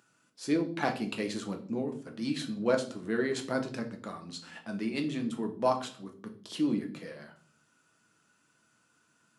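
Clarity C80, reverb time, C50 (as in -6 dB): 16.5 dB, 0.45 s, 12.0 dB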